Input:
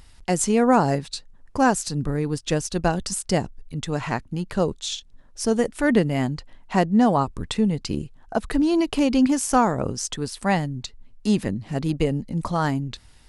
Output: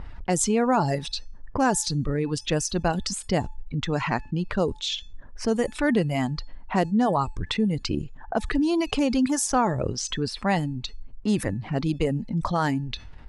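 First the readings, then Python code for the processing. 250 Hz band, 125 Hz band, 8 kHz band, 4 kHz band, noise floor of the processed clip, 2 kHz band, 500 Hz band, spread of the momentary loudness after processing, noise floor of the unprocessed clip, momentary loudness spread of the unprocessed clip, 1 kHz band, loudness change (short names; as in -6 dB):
-3.0 dB, -1.5 dB, -0.5 dB, +1.0 dB, -44 dBFS, -1.5 dB, -2.5 dB, 9 LU, -50 dBFS, 11 LU, -2.5 dB, -2.5 dB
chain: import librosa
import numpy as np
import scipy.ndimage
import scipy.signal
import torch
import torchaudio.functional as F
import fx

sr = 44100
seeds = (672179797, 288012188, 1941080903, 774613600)

y = fx.env_lowpass(x, sr, base_hz=1400.0, full_db=-17.0)
y = fx.dereverb_blind(y, sr, rt60_s=1.2)
y = fx.comb_fb(y, sr, f0_hz=870.0, decay_s=0.34, harmonics='all', damping=0.0, mix_pct=40)
y = fx.env_flatten(y, sr, amount_pct=50)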